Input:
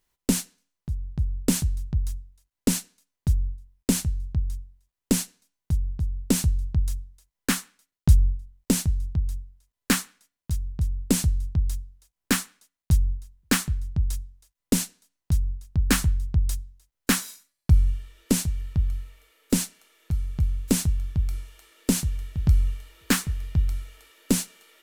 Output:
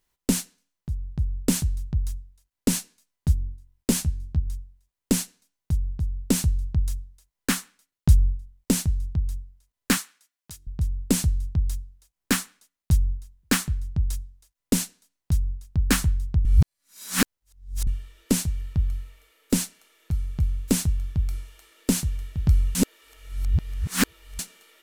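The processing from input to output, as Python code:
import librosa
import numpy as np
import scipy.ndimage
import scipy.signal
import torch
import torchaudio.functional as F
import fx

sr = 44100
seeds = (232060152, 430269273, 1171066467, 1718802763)

y = fx.doubler(x, sr, ms=13.0, db=-8.0, at=(2.72, 4.47))
y = fx.highpass(y, sr, hz=900.0, slope=6, at=(9.97, 10.67))
y = fx.edit(y, sr, fx.reverse_span(start_s=16.45, length_s=1.42),
    fx.reverse_span(start_s=22.75, length_s=1.64), tone=tone)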